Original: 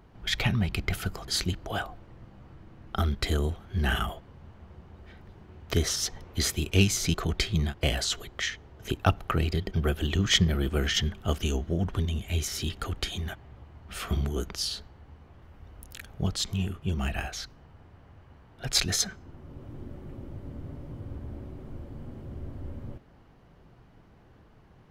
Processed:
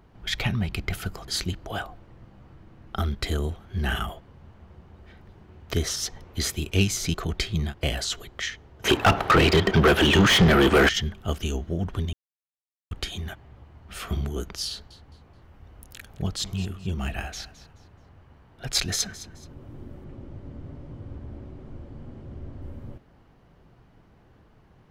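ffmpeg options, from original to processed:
-filter_complex "[0:a]asettb=1/sr,asplit=3[a][b][c];[a]atrim=end=8.844[d];[b]atrim=start=8.84:end=10.89,asetpts=PTS-STARTPTS,afade=t=in:d=0.004:c=qsin,afade=t=out:st=2.046:d=0.004:c=qsin,asplit=2[e][f];[f]highpass=f=720:p=1,volume=33dB,asoftclip=type=tanh:threshold=-7.5dB[g];[e][g]amix=inputs=2:normalize=0,lowpass=f=2.1k:p=1,volume=-6dB[h];[c]atrim=start=10.886[i];[d][h]acrossfade=d=0.004:c1=hsin:c2=qsin[j];[j][i]acrossfade=d=0.004:c1=qsin:c2=hsin,asettb=1/sr,asplit=3[k][l][m];[k]atrim=end=14.694[n];[l]atrim=start=14.69:end=19.54,asetpts=PTS-STARTPTS,afade=t=in:d=0.004:c=qsin,afade=t=out:st=4.846:d=0.004:c=qsin,aecho=1:1:214|428|642:0.158|0.0475|0.0143,atrim=end_sample=213885[o];[m]atrim=start=19.536[p];[n][o]acrossfade=d=0.004:c1=hsin:c2=qsin[q];[q][p]acrossfade=d=0.004:c1=qsin:c2=hsin,asettb=1/sr,asplit=3[r][s][t];[r]atrim=end=20.044[u];[s]atrim=start=20.04:end=22.62,asetpts=PTS-STARTPTS,afade=t=in:d=0.004:c=qsin,afade=t=out:st=2.576:d=0.004:c=qsin,lowpass=7.3k[v];[t]atrim=start=22.616[w];[u][v]acrossfade=d=0.004:c1=hsin:c2=qsin[x];[x][w]acrossfade=d=0.004:c1=qsin:c2=hsin,asplit=3[y][z][aa];[y]atrim=end=12.13,asetpts=PTS-STARTPTS,afade=t=out:st=12.126:d=0.004:c=hsin[ab];[z]atrim=start=12.13:end=12.91,asetpts=PTS-STARTPTS,volume=0[ac];[aa]atrim=start=12.91,asetpts=PTS-STARTPTS,afade=t=in:d=0.004:c=hsin[ad];[ab][ac][ad]concat=n=3:v=0:a=1"

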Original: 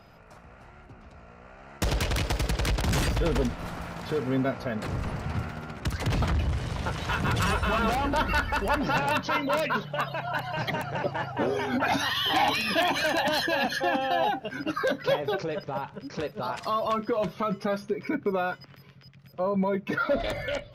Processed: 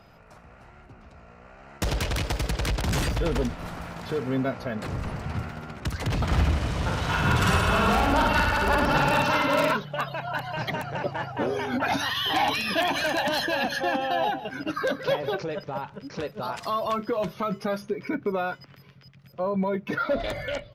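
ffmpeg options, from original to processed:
-filter_complex "[0:a]asplit=3[a][b][c];[a]afade=t=out:st=6.3:d=0.02[d];[b]aecho=1:1:50|107.5|173.6|249.7|337.1|437.7:0.794|0.631|0.501|0.398|0.316|0.251,afade=t=in:st=6.3:d=0.02,afade=t=out:st=9.73:d=0.02[e];[c]afade=t=in:st=9.73:d=0.02[f];[d][e][f]amix=inputs=3:normalize=0,asettb=1/sr,asplit=3[g][h][i];[g]atrim=end=12.714[j];[h]atrim=start=12.71:end=15.4,asetpts=PTS-STARTPTS,afade=t=in:d=0.004:c=qsin,afade=t=out:st=2.686:d=0.004:c=qsin,aecho=1:1:156:0.188,atrim=end_sample=118629[k];[i]atrim=start=15.396[l];[j][k]acrossfade=d=0.004:c1=hsin:c2=qsin[m];[m][l]acrossfade=d=0.004:c1=qsin:c2=hsin,asettb=1/sr,asplit=3[n][o][p];[n]atrim=end=16.374[q];[o]atrim=start=16.37:end=17.82,asetpts=PTS-STARTPTS,afade=t=in:d=0.004:c=qsin,afade=t=out:st=1.446:d=0.004:c=qsin,highshelf=f=8.7k:g=6.5[r];[p]atrim=start=17.816[s];[q][r]acrossfade=d=0.004:c1=hsin:c2=qsin[t];[t][s]acrossfade=d=0.004:c1=qsin:c2=hsin"

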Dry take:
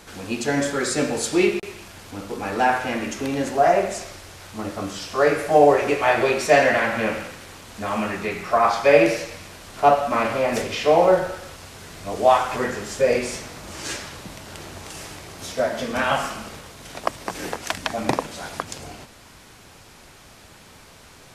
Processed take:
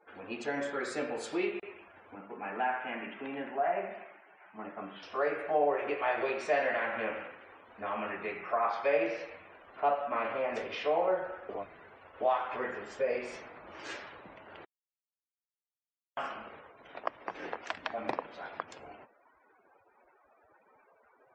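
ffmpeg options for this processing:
-filter_complex "[0:a]asettb=1/sr,asplit=3[a][b][c];[a]atrim=end=2.154[d];[b]atrim=start=2.15:end=5.03,asetpts=PTS-STARTPTS,afade=t=in:d=0.004:c=qsin,afade=t=out:st=2.876:d=0.004:c=qsin,highpass=170,equalizer=f=190:t=q:w=4:g=6,equalizer=f=330:t=q:w=4:g=-4,equalizer=f=510:t=q:w=4:g=-8,equalizer=f=1.2k:t=q:w=4:g=-3,lowpass=f=3.6k:w=0.5412,lowpass=f=3.6k:w=1.3066[e];[c]atrim=start=5.026[f];[d][e]acrossfade=d=0.004:c1=hsin:c2=qsin[g];[g][f]acrossfade=d=0.004:c1=qsin:c2=hsin,asplit=5[h][i][j][k][l];[h]atrim=end=11.492[m];[i]atrim=start=11.488:end=12.212,asetpts=PTS-STARTPTS,areverse[n];[j]atrim=start=12.208:end=14.65,asetpts=PTS-STARTPTS,afade=t=out:st=2.438:d=0.004:c=hsin[o];[k]atrim=start=14.65:end=16.17,asetpts=PTS-STARTPTS,volume=0[p];[l]atrim=start=16.17,asetpts=PTS-STARTPTS,afade=t=in:d=0.004:c=hsin[q];[m][n]acrossfade=d=0.004:c1=hsin:c2=hsin[r];[o][p][q]concat=n=3:v=0:a=1[s];[r][s]acrossfade=d=0.004:c1=hsin:c2=hsin,bass=f=250:g=-14,treble=f=4k:g=-13,afftdn=nr=35:nf=-46,acompressor=threshold=-26dB:ratio=1.5,volume=-7.5dB"

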